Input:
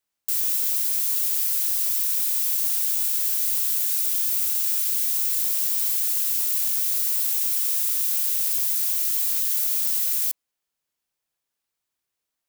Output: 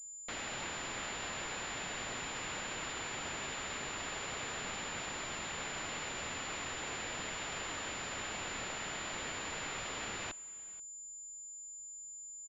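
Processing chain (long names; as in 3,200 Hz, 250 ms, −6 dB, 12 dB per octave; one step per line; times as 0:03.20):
spectral tilt −4.5 dB per octave
single-tap delay 483 ms −22.5 dB
switching amplifier with a slow clock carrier 7,100 Hz
level +3 dB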